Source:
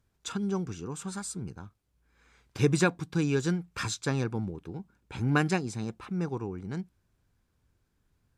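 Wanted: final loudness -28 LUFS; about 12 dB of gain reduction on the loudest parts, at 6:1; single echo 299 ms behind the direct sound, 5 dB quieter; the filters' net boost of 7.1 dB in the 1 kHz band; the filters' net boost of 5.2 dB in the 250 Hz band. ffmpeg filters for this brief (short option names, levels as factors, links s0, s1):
-af "equalizer=f=250:t=o:g=7,equalizer=f=1000:t=o:g=9,acompressor=threshold=0.0398:ratio=6,aecho=1:1:299:0.562,volume=1.78"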